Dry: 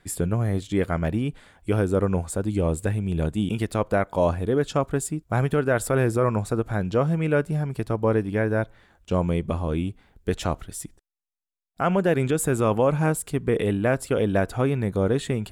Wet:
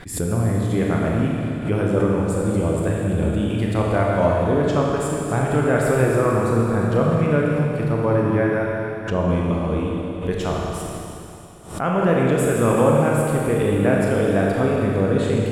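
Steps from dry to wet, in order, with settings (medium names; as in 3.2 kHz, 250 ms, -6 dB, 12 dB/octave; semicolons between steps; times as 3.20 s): treble shelf 4.5 kHz -6 dB; Schroeder reverb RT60 3 s, combs from 27 ms, DRR -3 dB; swell ahead of each attack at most 110 dB/s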